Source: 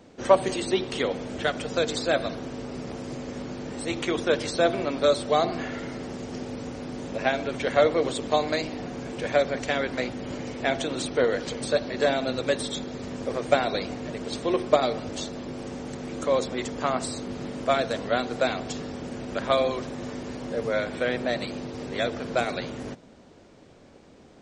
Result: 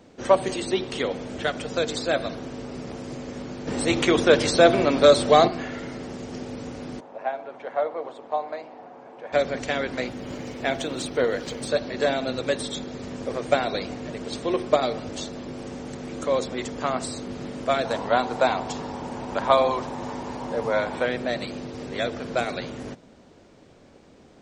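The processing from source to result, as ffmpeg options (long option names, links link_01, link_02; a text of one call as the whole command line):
ffmpeg -i in.wav -filter_complex "[0:a]asettb=1/sr,asplit=3[link_01][link_02][link_03];[link_01]atrim=end=3.674[link_04];[link_02]atrim=start=3.67:end=5.48,asetpts=PTS-STARTPTS,afade=type=in:duration=0.004:curve=qsin,afade=type=out:start_time=1.806:duration=0.004:curve=qsin,acontrast=89[link_05];[link_03]atrim=start=5.476[link_06];[link_04][link_05]acrossfade=duration=0.004:curve1=hsin:curve2=qsin[link_07];[link_07][link_06]acrossfade=duration=0.004:curve1=qsin:curve2=hsin,asplit=3[link_08][link_09][link_10];[link_08]afade=type=out:start_time=6.99:duration=0.02[link_11];[link_09]bandpass=frequency=830:width_type=q:width=2.1,afade=type=in:start_time=6.99:duration=0.02,afade=type=out:start_time=9.32:duration=0.02[link_12];[link_10]afade=type=in:start_time=9.32:duration=0.02[link_13];[link_11][link_12][link_13]amix=inputs=3:normalize=0,asettb=1/sr,asplit=3[link_14][link_15][link_16];[link_14]atrim=end=10.074[link_17];[link_15]atrim=start=10.07:end=11.68,asetpts=PTS-STARTPTS,afade=type=in:duration=0.004:curve=qsin,afade=type=out:start_time=1.606:duration=0.004:curve=qsin,aeval=exprs='sgn(val(0))*max(abs(val(0))-0.00158,0)':channel_layout=same[link_18];[link_16]atrim=start=11.676[link_19];[link_17][link_18]acrossfade=duration=0.004:curve1=hsin:curve2=qsin[link_20];[link_20][link_19]acrossfade=duration=0.004:curve1=qsin:curve2=hsin,asettb=1/sr,asplit=3[link_21][link_22][link_23];[link_21]atrim=end=17.854[link_24];[link_22]atrim=start=17.85:end=21.06,asetpts=PTS-STARTPTS,afade=type=in:duration=0.004:curve=qsin,afade=type=out:start_time=3.206:duration=0.004:curve=qsin,equalizer=frequency=910:width_type=o:width=0.56:gain=14.5[link_25];[link_23]atrim=start=21.056[link_26];[link_24][link_25]acrossfade=duration=0.004:curve1=hsin:curve2=qsin[link_27];[link_27][link_26]acrossfade=duration=0.004:curve1=qsin:curve2=hsin" out.wav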